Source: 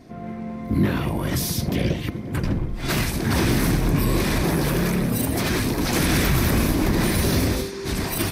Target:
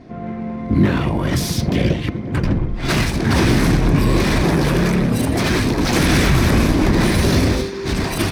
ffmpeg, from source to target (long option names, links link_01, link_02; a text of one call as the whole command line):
ffmpeg -i in.wav -af "adynamicsmooth=sensitivity=6.5:basefreq=4200,volume=5.5dB" out.wav